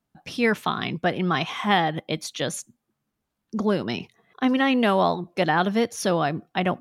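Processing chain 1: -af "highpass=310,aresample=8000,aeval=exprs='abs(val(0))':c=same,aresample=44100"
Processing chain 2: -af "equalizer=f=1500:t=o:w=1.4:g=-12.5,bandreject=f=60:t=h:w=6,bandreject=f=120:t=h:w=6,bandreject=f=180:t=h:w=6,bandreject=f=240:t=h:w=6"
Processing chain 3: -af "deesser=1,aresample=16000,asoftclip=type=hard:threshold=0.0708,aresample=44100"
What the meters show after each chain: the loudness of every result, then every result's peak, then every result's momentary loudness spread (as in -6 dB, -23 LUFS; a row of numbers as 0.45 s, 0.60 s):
-29.0 LUFS, -27.0 LUFS, -29.0 LUFS; -6.0 dBFS, -10.0 dBFS, -22.0 dBFS; 11 LU, 11 LU, 9 LU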